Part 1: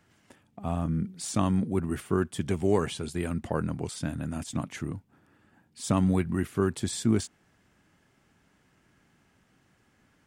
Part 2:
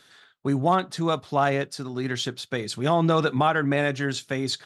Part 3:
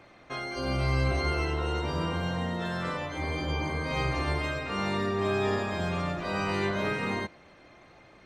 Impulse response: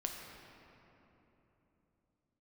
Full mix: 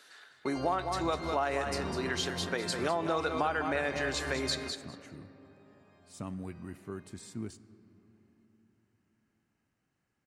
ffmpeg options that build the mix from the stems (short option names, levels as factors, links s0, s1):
-filter_complex "[0:a]adelay=300,volume=0.141,asplit=2[s0][s1];[s1]volume=0.266[s2];[1:a]highpass=380,volume=0.75,asplit=4[s3][s4][s5][s6];[s4]volume=0.335[s7];[s5]volume=0.447[s8];[2:a]alimiter=level_in=1.12:limit=0.0631:level=0:latency=1:release=424,volume=0.891,volume=0.596,asplit=2[s9][s10];[s10]volume=0.0631[s11];[s6]apad=whole_len=363872[s12];[s9][s12]sidechaingate=range=0.0224:threshold=0.00447:ratio=16:detection=peak[s13];[3:a]atrim=start_sample=2205[s14];[s2][s7]amix=inputs=2:normalize=0[s15];[s15][s14]afir=irnorm=-1:irlink=0[s16];[s8][s11]amix=inputs=2:normalize=0,aecho=0:1:202|404|606:1|0.15|0.0225[s17];[s0][s3][s13][s16][s17]amix=inputs=5:normalize=0,bandreject=f=3400:w=9.2,acompressor=threshold=0.0355:ratio=3"